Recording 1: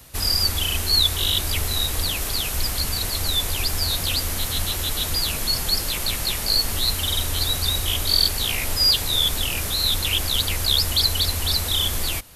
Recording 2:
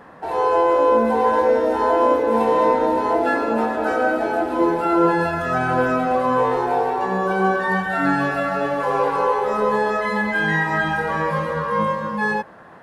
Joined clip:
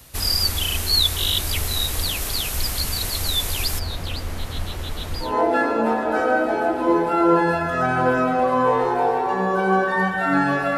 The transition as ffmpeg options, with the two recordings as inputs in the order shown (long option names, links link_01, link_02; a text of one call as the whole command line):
ffmpeg -i cue0.wav -i cue1.wav -filter_complex "[0:a]asplit=3[link_01][link_02][link_03];[link_01]afade=type=out:start_time=3.78:duration=0.02[link_04];[link_02]lowpass=frequency=1400:poles=1,afade=type=in:start_time=3.78:duration=0.02,afade=type=out:start_time=5.37:duration=0.02[link_05];[link_03]afade=type=in:start_time=5.37:duration=0.02[link_06];[link_04][link_05][link_06]amix=inputs=3:normalize=0,apad=whole_dur=10.77,atrim=end=10.77,atrim=end=5.37,asetpts=PTS-STARTPTS[link_07];[1:a]atrim=start=2.91:end=8.49,asetpts=PTS-STARTPTS[link_08];[link_07][link_08]acrossfade=duration=0.18:curve1=tri:curve2=tri" out.wav